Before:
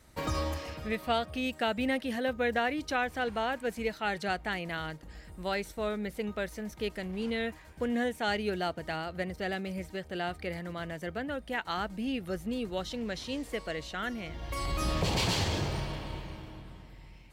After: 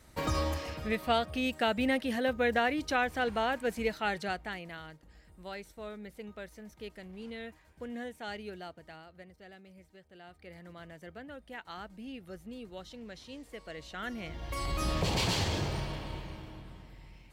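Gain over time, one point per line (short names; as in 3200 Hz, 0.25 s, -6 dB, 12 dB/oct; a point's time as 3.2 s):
3.99 s +1 dB
4.86 s -10 dB
8.4 s -10 dB
9.39 s -18.5 dB
10.23 s -18.5 dB
10.65 s -10.5 dB
13.53 s -10.5 dB
14.25 s -1 dB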